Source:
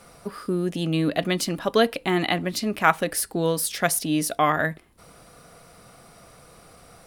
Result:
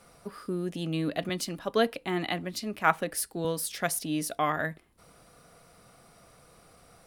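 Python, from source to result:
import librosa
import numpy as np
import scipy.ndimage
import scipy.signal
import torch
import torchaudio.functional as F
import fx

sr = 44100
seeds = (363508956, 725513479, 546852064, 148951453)

y = fx.band_widen(x, sr, depth_pct=40, at=(1.29, 3.45))
y = y * librosa.db_to_amplitude(-7.0)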